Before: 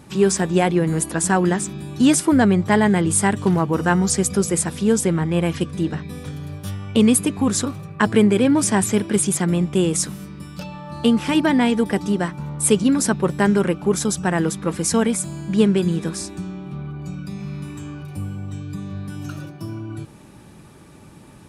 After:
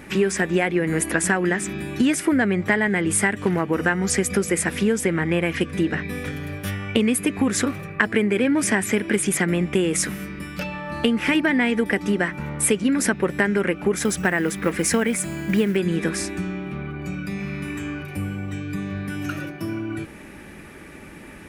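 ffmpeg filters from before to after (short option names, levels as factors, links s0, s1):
-filter_complex "[0:a]asettb=1/sr,asplit=3[s0][s1][s2];[s0]atrim=end=14.024[s3];[s1]atrim=start=14.02:end=15.77,asetpts=PTS-STARTPTS,afade=t=in:d=0.004:c=qsin,afade=t=out:st=1.746:d=0.004:c=qsin,acrusher=bits=7:mode=log:mix=0:aa=0.000001[s4];[s2]atrim=start=15.766[s5];[s3][s4]acrossfade=d=0.004:c1=hsin:c2=qsin[s6];[s6][s5]acrossfade=d=0.004:c1=qsin:c2=hsin,equalizer=f=125:t=o:w=1:g=-12,equalizer=f=1000:t=o:w=1:g=-7,equalizer=f=2000:t=o:w=1:g=11,equalizer=f=4000:t=o:w=1:g=-7,equalizer=f=8000:t=o:w=1:g=-6,acompressor=threshold=0.0631:ratio=6,volume=2.24"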